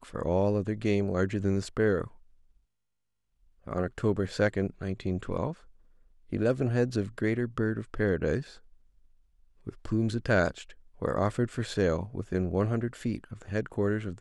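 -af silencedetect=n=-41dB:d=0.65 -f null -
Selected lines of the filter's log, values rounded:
silence_start: 2.08
silence_end: 3.67 | silence_duration: 1.60
silence_start: 5.53
silence_end: 6.32 | silence_duration: 0.79
silence_start: 8.57
silence_end: 9.67 | silence_duration: 1.10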